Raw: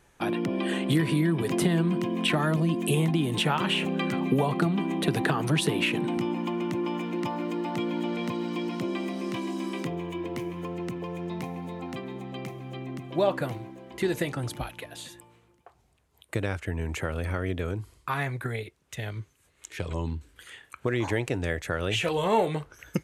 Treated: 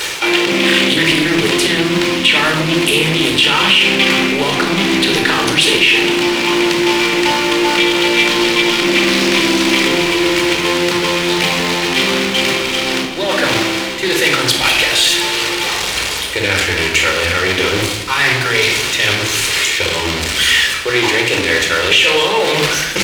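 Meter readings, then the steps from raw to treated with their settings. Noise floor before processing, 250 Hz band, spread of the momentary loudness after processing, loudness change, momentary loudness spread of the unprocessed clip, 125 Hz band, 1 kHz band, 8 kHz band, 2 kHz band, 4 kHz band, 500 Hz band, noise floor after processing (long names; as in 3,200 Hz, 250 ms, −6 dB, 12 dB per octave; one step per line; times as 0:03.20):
−65 dBFS, +11.0 dB, 5 LU, +16.5 dB, 13 LU, +5.0 dB, +14.5 dB, +22.5 dB, +22.5 dB, +24.0 dB, +13.5 dB, −20 dBFS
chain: converter with a step at zero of −27 dBFS
noise gate −29 dBFS, range −9 dB
parametric band 130 Hz −13 dB 1.6 octaves
reversed playback
downward compressor 6 to 1, threshold −37 dBFS, peak gain reduction 17 dB
reversed playback
meter weighting curve D
on a send: echo with shifted repeats 253 ms, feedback 62%, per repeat −96 Hz, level −22.5 dB
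on the sum: rectangular room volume 2,400 cubic metres, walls furnished, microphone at 4.5 metres
boost into a limiter +17.5 dB
highs frequency-modulated by the lows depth 0.24 ms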